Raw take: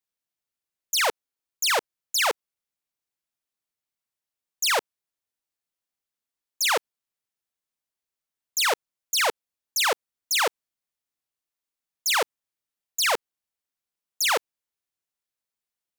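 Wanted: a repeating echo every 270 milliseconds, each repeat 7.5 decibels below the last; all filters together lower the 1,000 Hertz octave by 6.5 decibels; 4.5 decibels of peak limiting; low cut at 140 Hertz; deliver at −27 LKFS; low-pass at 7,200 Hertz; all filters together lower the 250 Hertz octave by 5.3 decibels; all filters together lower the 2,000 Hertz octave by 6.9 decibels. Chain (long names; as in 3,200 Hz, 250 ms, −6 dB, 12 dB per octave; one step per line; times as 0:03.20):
high-pass filter 140 Hz
low-pass filter 7,200 Hz
parametric band 250 Hz −8 dB
parametric band 1,000 Hz −6 dB
parametric band 2,000 Hz −7 dB
brickwall limiter −20.5 dBFS
repeating echo 270 ms, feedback 42%, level −7.5 dB
level +3.5 dB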